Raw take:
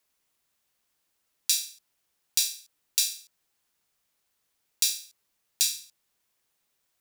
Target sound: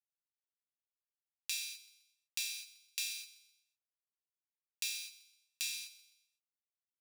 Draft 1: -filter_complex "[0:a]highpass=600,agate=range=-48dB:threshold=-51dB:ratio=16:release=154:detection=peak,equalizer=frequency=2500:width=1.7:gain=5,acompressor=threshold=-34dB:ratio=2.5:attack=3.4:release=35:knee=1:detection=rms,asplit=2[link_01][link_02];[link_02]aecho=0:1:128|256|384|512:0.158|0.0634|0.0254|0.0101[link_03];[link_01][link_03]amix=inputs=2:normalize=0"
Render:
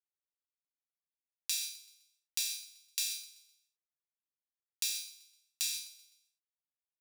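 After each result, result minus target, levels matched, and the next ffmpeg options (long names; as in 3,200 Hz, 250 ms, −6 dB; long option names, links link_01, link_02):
2,000 Hz band −6.5 dB; downward compressor: peak gain reduction −6 dB
-filter_complex "[0:a]highpass=600,agate=range=-48dB:threshold=-51dB:ratio=16:release=154:detection=peak,equalizer=frequency=2500:width=1.7:gain=14,acompressor=threshold=-34dB:ratio=2.5:attack=3.4:release=35:knee=1:detection=rms,asplit=2[link_01][link_02];[link_02]aecho=0:1:128|256|384|512:0.158|0.0634|0.0254|0.0101[link_03];[link_01][link_03]amix=inputs=2:normalize=0"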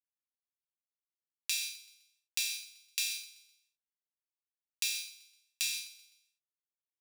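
downward compressor: peak gain reduction −5 dB
-filter_complex "[0:a]highpass=600,agate=range=-48dB:threshold=-51dB:ratio=16:release=154:detection=peak,equalizer=frequency=2500:width=1.7:gain=14,acompressor=threshold=-42dB:ratio=2.5:attack=3.4:release=35:knee=1:detection=rms,asplit=2[link_01][link_02];[link_02]aecho=0:1:128|256|384|512:0.158|0.0634|0.0254|0.0101[link_03];[link_01][link_03]amix=inputs=2:normalize=0"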